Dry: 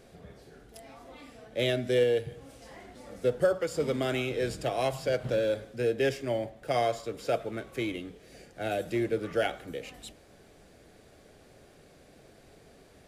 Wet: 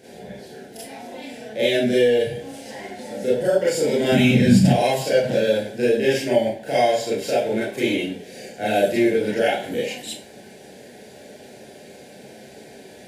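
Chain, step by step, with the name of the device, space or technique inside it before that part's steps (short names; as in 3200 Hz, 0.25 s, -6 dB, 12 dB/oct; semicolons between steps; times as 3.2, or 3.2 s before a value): PA system with an anti-feedback notch (HPF 140 Hz 12 dB/oct; Butterworth band-stop 1200 Hz, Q 2.5; limiter -24 dBFS, peak gain reduction 9.5 dB); 4.12–4.7 resonant low shelf 290 Hz +13 dB, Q 3; Schroeder reverb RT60 0.31 s, combs from 29 ms, DRR -8 dB; gain +5.5 dB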